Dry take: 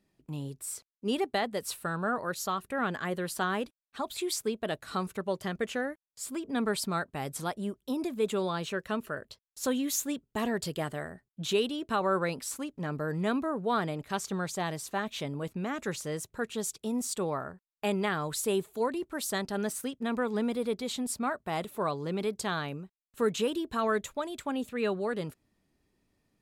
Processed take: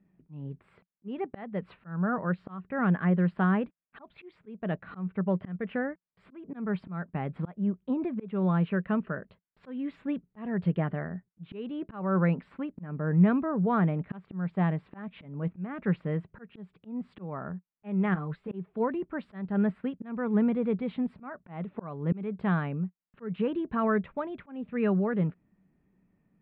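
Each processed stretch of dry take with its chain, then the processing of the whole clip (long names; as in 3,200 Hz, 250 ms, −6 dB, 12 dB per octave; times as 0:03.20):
0:18.14–0:18.54: downward compressor 3 to 1, threshold −33 dBFS + string-ensemble chorus
whole clip: inverse Chebyshev low-pass filter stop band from 5,800 Hz, stop band 50 dB; parametric band 180 Hz +14.5 dB 0.58 octaves; volume swells 302 ms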